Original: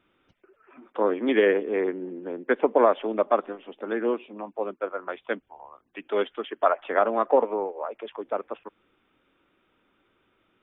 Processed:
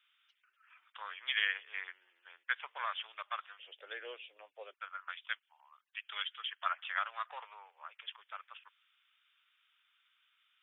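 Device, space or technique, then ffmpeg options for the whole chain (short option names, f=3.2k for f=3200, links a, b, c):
headphones lying on a table: -filter_complex "[0:a]asettb=1/sr,asplit=3[a][b][c];[a]atrim=end=3.594[d];[b]atrim=start=3.59:end=4.74,asetpts=PTS-STARTPTS,afade=t=in:d=0.004:c=qsin,afade=t=out:st=1.146:d=0.004:c=qsin,lowshelf=f=730:t=q:w=3:g=13[e];[c]atrim=start=4.736[f];[d][e]acrossfade=d=0.004:c1=hsin:c2=qsin[g];[g][f]acrossfade=d=0.004:c1=qsin:c2=hsin,highpass=f=1.4k:w=0.5412,highpass=f=1.4k:w=1.3066,equalizer=f=3.2k:t=o:w=0.53:g=8.5,volume=-4dB"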